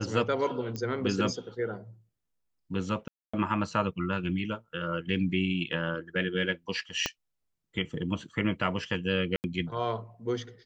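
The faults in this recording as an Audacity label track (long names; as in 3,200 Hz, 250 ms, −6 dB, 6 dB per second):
0.760000	0.760000	click −22 dBFS
3.080000	3.330000	drop-out 255 ms
7.060000	7.060000	click −12 dBFS
9.360000	9.440000	drop-out 79 ms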